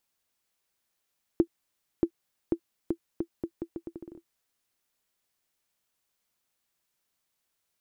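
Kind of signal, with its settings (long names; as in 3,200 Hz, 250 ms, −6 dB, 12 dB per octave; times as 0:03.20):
bouncing ball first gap 0.63 s, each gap 0.78, 336 Hz, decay 74 ms −10.5 dBFS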